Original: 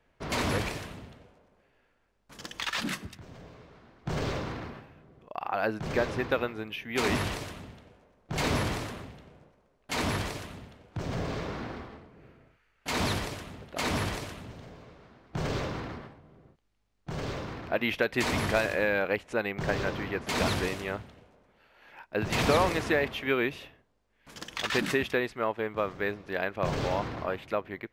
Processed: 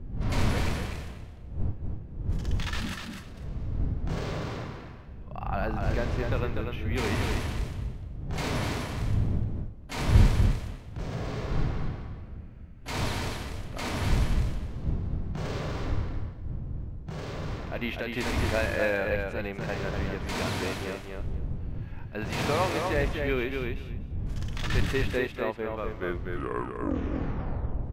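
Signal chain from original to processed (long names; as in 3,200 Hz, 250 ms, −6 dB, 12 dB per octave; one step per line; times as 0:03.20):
turntable brake at the end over 2.10 s
wind on the microphone 100 Hz −30 dBFS
harmonic and percussive parts rebalanced percussive −10 dB
repeating echo 245 ms, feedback 16%, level −4.5 dB
level +1 dB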